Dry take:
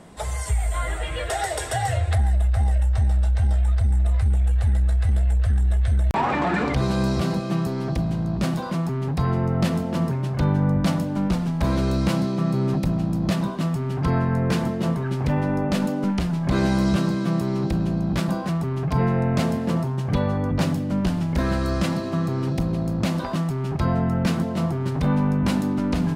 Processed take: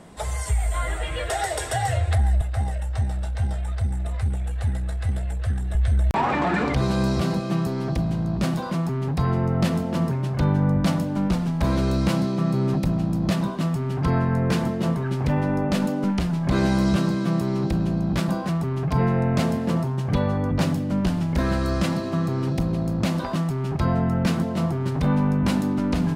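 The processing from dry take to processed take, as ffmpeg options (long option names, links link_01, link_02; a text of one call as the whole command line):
ffmpeg -i in.wav -filter_complex "[0:a]asettb=1/sr,asplit=3[link_01][link_02][link_03];[link_01]atrim=end=2.414[link_04];[link_02]atrim=start=2.41:end=5.75,asetpts=PTS-STARTPTS,afade=type=in:duration=0.004:curve=qsin,afade=type=out:start_time=3.336:duration=0.004:curve=qsin,highpass=frequency=77:width=0.5412,highpass=frequency=77:width=1.3066[link_05];[link_03]atrim=start=5.746[link_06];[link_04][link_05]acrossfade=duration=0.004:curve1=hsin:curve2=qsin[link_07];[link_07][link_06]acrossfade=duration=0.004:curve1=qsin:curve2=hsin" out.wav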